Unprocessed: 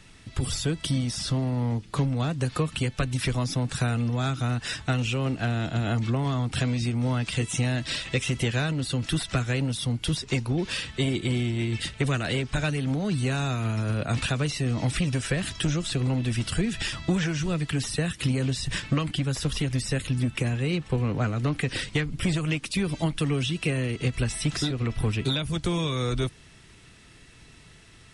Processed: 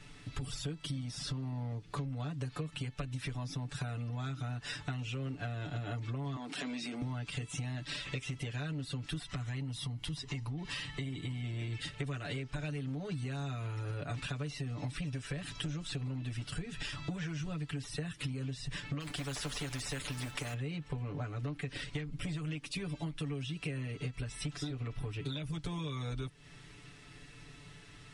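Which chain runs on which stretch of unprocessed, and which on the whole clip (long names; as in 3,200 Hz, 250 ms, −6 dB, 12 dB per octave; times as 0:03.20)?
0:06.36–0:07.02: Butterworth high-pass 210 Hz + transient designer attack −6 dB, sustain +7 dB
0:09.25–0:11.44: comb filter 1 ms, depth 41% + downward compressor, threshold −25 dBFS
0:19.00–0:20.54: low-shelf EQ 500 Hz +3.5 dB + noise that follows the level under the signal 35 dB + every bin compressed towards the loudest bin 2 to 1
whole clip: high-shelf EQ 7,300 Hz −7.5 dB; comb filter 6.9 ms, depth 92%; downward compressor 5 to 1, threshold −33 dBFS; level −4 dB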